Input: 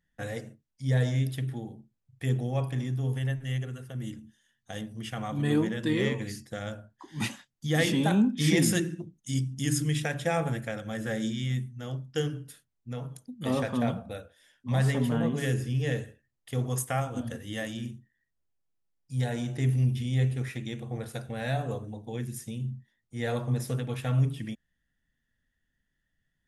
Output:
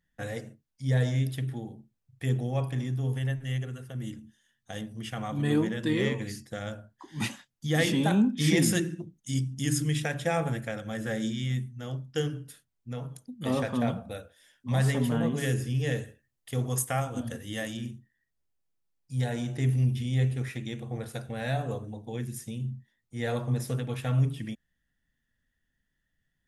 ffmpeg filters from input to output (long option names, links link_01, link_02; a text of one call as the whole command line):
ffmpeg -i in.wav -filter_complex "[0:a]asettb=1/sr,asplit=3[link_01][link_02][link_03];[link_01]atrim=end=14.024[link_04];[link_02]atrim=start=14.02:end=17.77,asetpts=PTS-STARTPTS,afade=type=in:duration=0.004:curve=qsin,afade=type=out:start_time=3.746:duration=0.004:curve=qsin,highshelf=frequency=5700:gain=4.5[link_05];[link_03]atrim=start=17.766[link_06];[link_04][link_05]acrossfade=duration=0.004:curve1=hsin:curve2=qsin[link_07];[link_07][link_06]acrossfade=duration=0.004:curve1=qsin:curve2=hsin" out.wav